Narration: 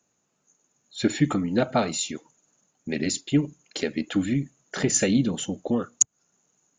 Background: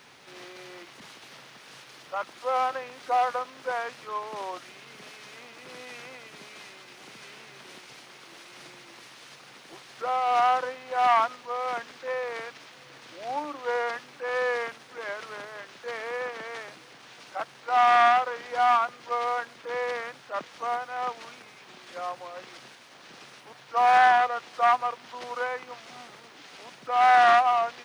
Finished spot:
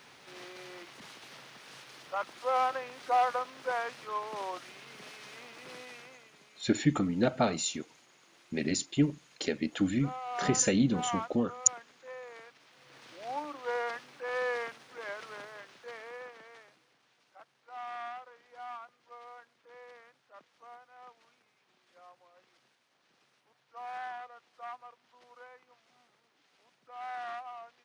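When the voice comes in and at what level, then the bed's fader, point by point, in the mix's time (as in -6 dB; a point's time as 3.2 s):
5.65 s, -4.5 dB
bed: 5.72 s -2.5 dB
6.43 s -14 dB
12.6 s -14 dB
13 s -5.5 dB
15.45 s -5.5 dB
17.19 s -22 dB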